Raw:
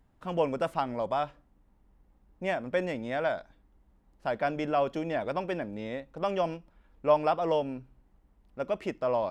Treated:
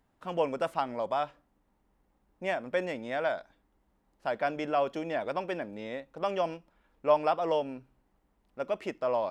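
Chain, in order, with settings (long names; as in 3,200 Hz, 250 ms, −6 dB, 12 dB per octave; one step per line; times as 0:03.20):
low-shelf EQ 170 Hz −11.5 dB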